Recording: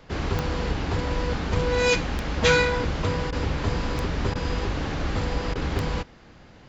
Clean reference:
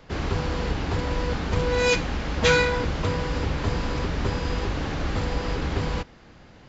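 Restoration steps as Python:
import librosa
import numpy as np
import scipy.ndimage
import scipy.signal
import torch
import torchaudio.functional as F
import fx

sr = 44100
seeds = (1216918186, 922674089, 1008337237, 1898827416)

y = fx.fix_declick_ar(x, sr, threshold=10.0)
y = fx.fix_interpolate(y, sr, at_s=(3.31, 4.34, 5.54), length_ms=13.0)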